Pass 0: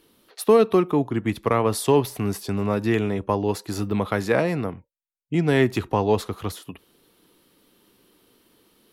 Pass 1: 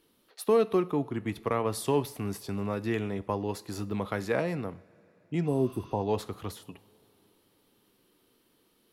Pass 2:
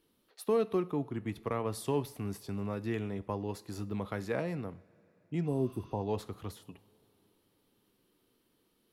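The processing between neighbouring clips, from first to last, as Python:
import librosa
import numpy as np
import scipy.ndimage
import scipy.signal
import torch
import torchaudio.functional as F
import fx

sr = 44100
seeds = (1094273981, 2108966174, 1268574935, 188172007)

y1 = fx.spec_repair(x, sr, seeds[0], start_s=5.49, length_s=0.49, low_hz=1000.0, high_hz=7800.0, source='after')
y1 = fx.rev_double_slope(y1, sr, seeds[1], early_s=0.52, late_s=4.2, knee_db=-18, drr_db=16.0)
y1 = F.gain(torch.from_numpy(y1), -8.0).numpy()
y2 = fx.low_shelf(y1, sr, hz=260.0, db=4.5)
y2 = F.gain(torch.from_numpy(y2), -6.5).numpy()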